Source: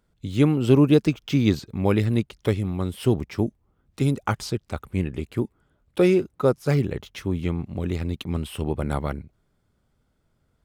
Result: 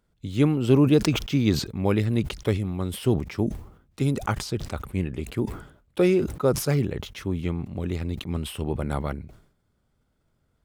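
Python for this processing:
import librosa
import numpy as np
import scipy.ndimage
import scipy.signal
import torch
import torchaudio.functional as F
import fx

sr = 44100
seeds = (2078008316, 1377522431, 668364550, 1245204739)

y = fx.sustainer(x, sr, db_per_s=98.0)
y = F.gain(torch.from_numpy(y), -2.0).numpy()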